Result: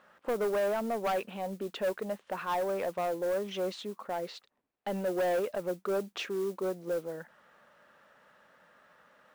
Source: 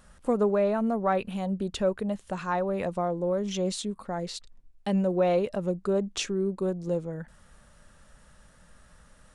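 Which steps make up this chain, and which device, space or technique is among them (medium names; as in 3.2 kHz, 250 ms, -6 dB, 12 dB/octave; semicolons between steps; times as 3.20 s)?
carbon microphone (band-pass 390–2600 Hz; saturation -27 dBFS, distortion -11 dB; modulation noise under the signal 22 dB); trim +1.5 dB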